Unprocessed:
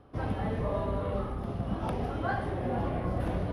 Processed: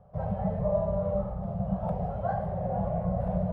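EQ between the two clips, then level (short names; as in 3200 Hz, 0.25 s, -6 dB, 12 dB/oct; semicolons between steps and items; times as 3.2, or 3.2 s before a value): EQ curve 110 Hz 0 dB, 190 Hz +8 dB, 280 Hz -28 dB, 600 Hz +8 dB, 1100 Hz -7 dB, 3000 Hz -18 dB; 0.0 dB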